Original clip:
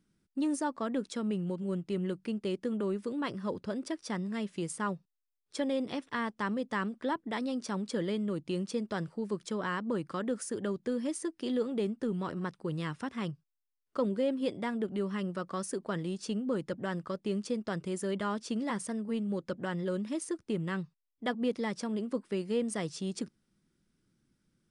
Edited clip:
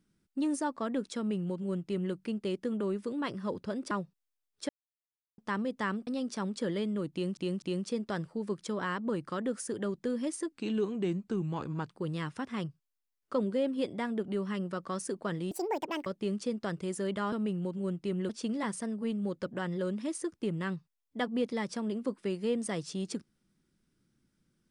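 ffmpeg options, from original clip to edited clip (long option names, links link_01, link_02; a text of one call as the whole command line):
ffmpeg -i in.wav -filter_complex "[0:a]asplit=13[link_01][link_02][link_03][link_04][link_05][link_06][link_07][link_08][link_09][link_10][link_11][link_12][link_13];[link_01]atrim=end=3.912[link_14];[link_02]atrim=start=4.828:end=5.61,asetpts=PTS-STARTPTS,afade=type=out:start_time=0.778:duration=0.004:curve=hsin[link_15];[link_03]atrim=start=5.61:end=6.3,asetpts=PTS-STARTPTS,volume=0[link_16];[link_04]atrim=start=6.3:end=6.992,asetpts=PTS-STARTPTS,afade=type=in:duration=0.004:curve=hsin[link_17];[link_05]atrim=start=7.388:end=8.692[link_18];[link_06]atrim=start=8.438:end=8.692[link_19];[link_07]atrim=start=8.438:end=11.344[link_20];[link_08]atrim=start=11.34:end=12.55,asetpts=PTS-STARTPTS,asetrate=38367,aresample=44100,atrim=end_sample=61334,asetpts=PTS-STARTPTS[link_21];[link_09]atrim=start=12.546:end=16.154[link_22];[link_10]atrim=start=16.15:end=17.1,asetpts=PTS-STARTPTS,asetrate=75852,aresample=44100[link_23];[link_11]atrim=start=17.096:end=18.362[link_24];[link_12]atrim=start=1.168:end=2.142[link_25];[link_13]atrim=start=18.358[link_26];[link_15][link_16][link_17]concat=n=3:v=0:a=1[link_27];[link_14][link_27]acrossfade=duration=0.004:curve1=hsin:curve2=hsin[link_28];[link_28][link_18]acrossfade=duration=0.004:curve1=hsin:curve2=hsin[link_29];[link_29][link_19]acrossfade=duration=0.004:curve1=hsin:curve2=hsin[link_30];[link_30][link_20]acrossfade=duration=0.004:curve1=hsin:curve2=hsin[link_31];[link_31][link_21]acrossfade=duration=0.004:curve1=hsin:curve2=hsin[link_32];[link_32][link_22]acrossfade=duration=0.004:curve1=hsin:curve2=hsin[link_33];[link_33][link_23]acrossfade=duration=0.004:curve1=hsin:curve2=hsin[link_34];[link_34][link_24]acrossfade=duration=0.004:curve1=hsin:curve2=hsin[link_35];[link_35][link_25]acrossfade=duration=0.004:curve1=hsin:curve2=hsin[link_36];[link_36][link_26]acrossfade=duration=0.004:curve1=hsin:curve2=hsin" out.wav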